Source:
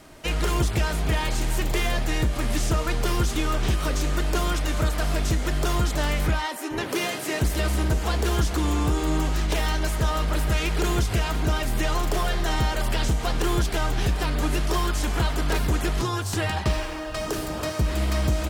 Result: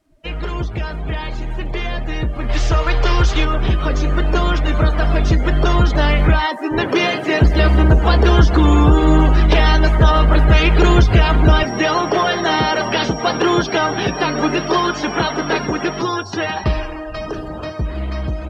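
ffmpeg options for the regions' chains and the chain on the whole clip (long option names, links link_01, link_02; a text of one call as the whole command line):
ffmpeg -i in.wav -filter_complex "[0:a]asettb=1/sr,asplit=3[link_01][link_02][link_03];[link_01]atrim=end=2.494[link_04];[link_02]atrim=start=2.49:end=3.45,asetpts=PTS-STARTPTS,afade=type=in:duration=0.004:curve=qsin,afade=type=out:start_time=0.956:duration=0.004:curve=qsin,equalizer=frequency=220:width=1.5:gain=-13.5,acontrast=28[link_05];[link_03]atrim=start=3.446[link_06];[link_04][link_05]acrossfade=duration=0.004:curve1=hsin:curve2=qsin[link_07];[link_07][link_06]acrossfade=duration=0.004:curve1=qsin:curve2=hsin,asettb=1/sr,asplit=3[link_08][link_09][link_10];[link_08]atrim=end=11.634[link_11];[link_09]atrim=start=11.63:end=16.64,asetpts=PTS-STARTPTS,afade=type=in:duration=0.004:curve=qsin,afade=type=out:start_time=5.006:duration=0.004:curve=qsin,highpass=210,lowpass=7500,aeval=exprs='val(0)+0.00708*sin(2*PI*5600*n/s)':channel_layout=same[link_12];[link_10]atrim=start=16.636[link_13];[link_11][link_12]acrossfade=duration=0.004:curve1=hsin:curve2=qsin[link_14];[link_14][link_13]acrossfade=duration=0.004:curve1=qsin:curve2=hsin,acrossover=split=6200[link_15][link_16];[link_16]acompressor=threshold=-49dB:ratio=4:attack=1:release=60[link_17];[link_15][link_17]amix=inputs=2:normalize=0,afftdn=noise_reduction=21:noise_floor=-36,dynaudnorm=framelen=720:gausssize=9:maxgain=16.5dB" out.wav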